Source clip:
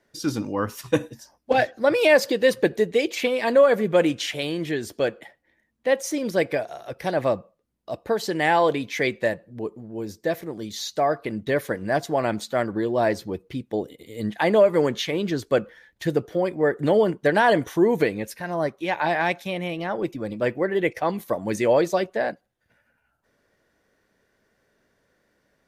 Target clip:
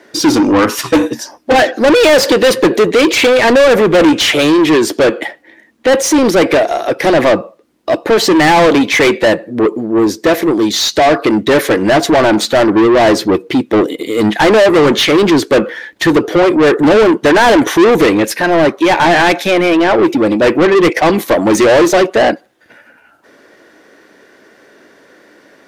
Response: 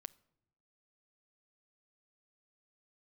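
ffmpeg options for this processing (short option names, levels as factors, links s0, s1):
-filter_complex "[0:a]equalizer=f=310:w=1.6:g=11,asplit=2[s0][s1];[s1]highpass=f=720:p=1,volume=35.5,asoftclip=type=tanh:threshold=0.891[s2];[s0][s2]amix=inputs=2:normalize=0,lowpass=f=4700:p=1,volume=0.501"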